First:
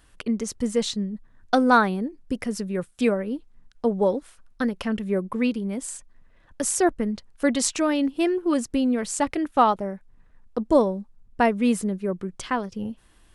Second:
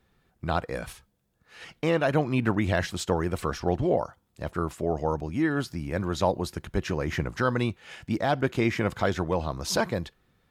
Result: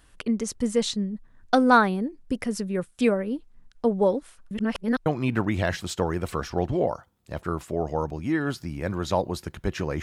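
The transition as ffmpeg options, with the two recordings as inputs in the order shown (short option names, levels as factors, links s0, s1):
-filter_complex "[0:a]apad=whole_dur=10.02,atrim=end=10.02,asplit=2[s0][s1];[s0]atrim=end=4.512[s2];[s1]atrim=start=4.508:end=5.062,asetpts=PTS-STARTPTS,areverse[s3];[1:a]atrim=start=2.158:end=7.12[s4];[s2][s3]acrossfade=d=0.004:c1=hsin:c2=hsin[s5];[s5][s4]acrossfade=d=0.004:c1=hsin:c2=hsin"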